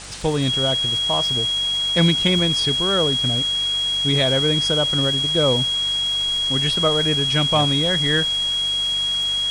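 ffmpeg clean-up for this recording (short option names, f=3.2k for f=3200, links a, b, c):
-af "adeclick=t=4,bandreject=f=48.4:t=h:w=4,bandreject=f=96.8:t=h:w=4,bandreject=f=145.2:t=h:w=4,bandreject=f=193.6:t=h:w=4,bandreject=f=3.3k:w=30,afwtdn=0.02"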